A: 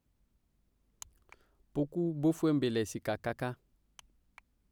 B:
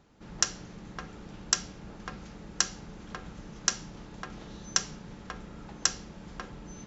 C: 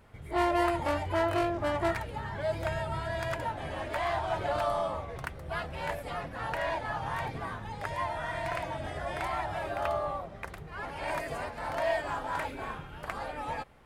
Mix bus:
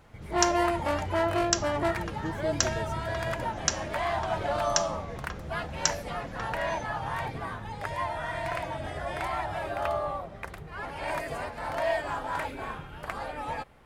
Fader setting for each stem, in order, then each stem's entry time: -8.0, -0.5, +1.5 dB; 0.00, 0.00, 0.00 s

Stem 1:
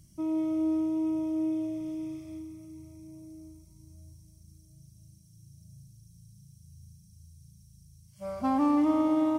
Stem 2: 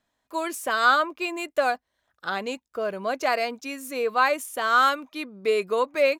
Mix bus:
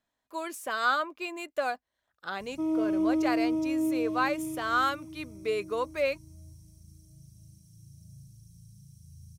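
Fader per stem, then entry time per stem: +1.5, -7.0 dB; 2.40, 0.00 s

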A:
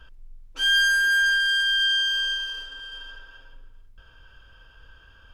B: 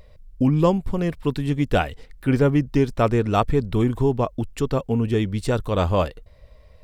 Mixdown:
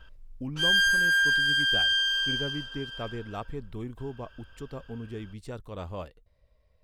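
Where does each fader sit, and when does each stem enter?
-2.5, -17.0 dB; 0.00, 0.00 s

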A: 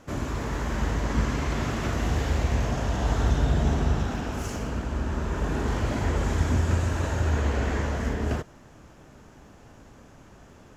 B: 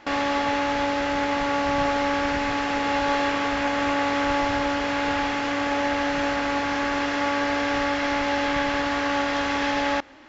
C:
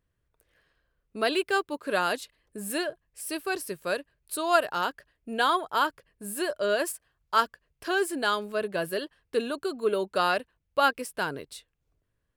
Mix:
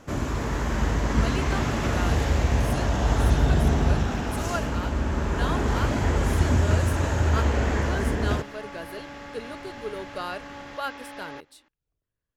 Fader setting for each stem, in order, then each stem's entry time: +2.5, -17.0, -8.5 dB; 0.00, 1.40, 0.00 s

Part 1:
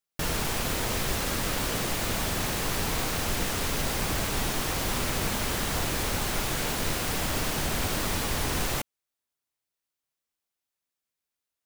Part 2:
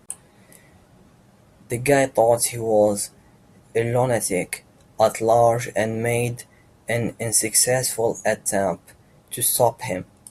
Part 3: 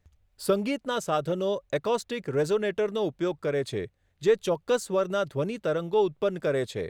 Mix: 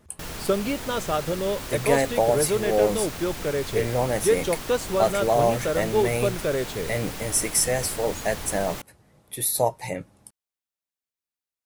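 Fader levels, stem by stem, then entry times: -6.5, -4.5, +1.0 dB; 0.00, 0.00, 0.00 s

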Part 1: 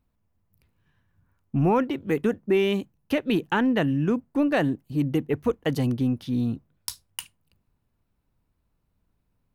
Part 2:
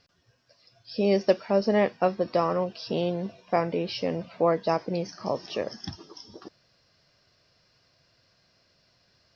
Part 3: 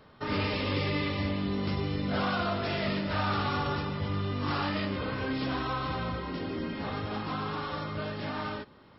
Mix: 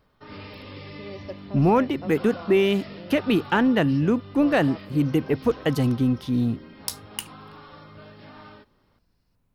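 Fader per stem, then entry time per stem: +2.5, -16.5, -10.5 dB; 0.00, 0.00, 0.00 s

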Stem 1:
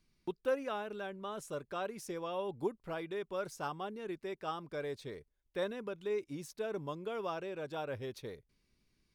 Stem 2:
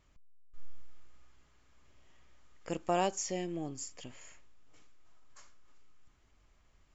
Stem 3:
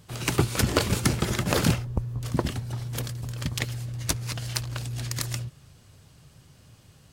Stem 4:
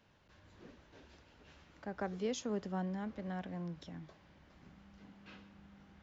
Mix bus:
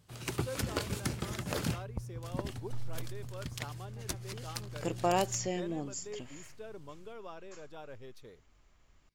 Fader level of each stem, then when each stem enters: -8.5, +1.5, -11.5, -15.5 dB; 0.00, 2.15, 0.00, 2.10 s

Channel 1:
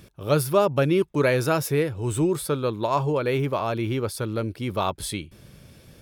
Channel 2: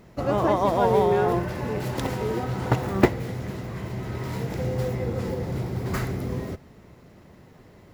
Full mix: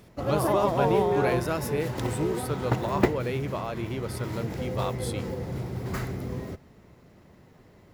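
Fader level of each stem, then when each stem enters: -7.0, -4.0 dB; 0.00, 0.00 s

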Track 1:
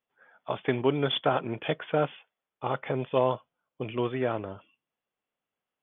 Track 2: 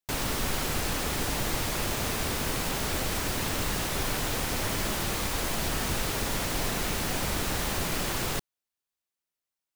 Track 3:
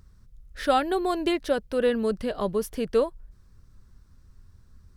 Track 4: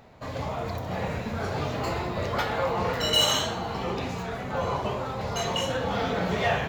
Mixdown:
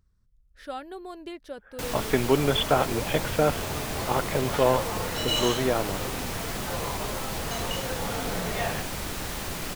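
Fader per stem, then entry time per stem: +3.0, -3.5, -14.0, -5.5 dB; 1.45, 1.70, 0.00, 2.15 s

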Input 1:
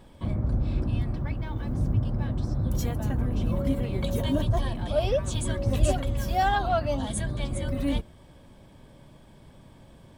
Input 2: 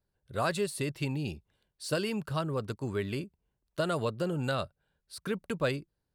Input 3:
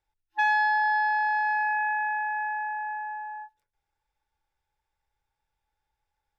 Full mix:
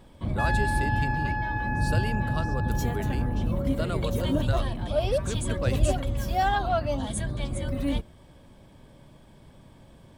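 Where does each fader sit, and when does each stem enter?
-0.5, -2.5, -6.0 dB; 0.00, 0.00, 0.00 s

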